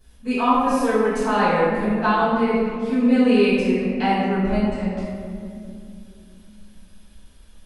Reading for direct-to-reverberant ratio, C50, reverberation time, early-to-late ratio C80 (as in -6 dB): -15.5 dB, -2.5 dB, 2.6 s, -0.5 dB